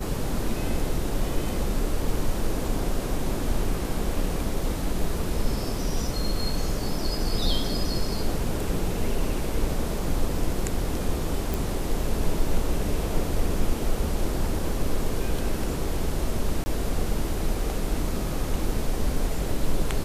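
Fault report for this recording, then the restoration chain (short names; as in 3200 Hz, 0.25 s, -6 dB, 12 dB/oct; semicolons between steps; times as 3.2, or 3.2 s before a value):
11.54 pop
16.64–16.66 gap 20 ms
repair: de-click; interpolate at 16.64, 20 ms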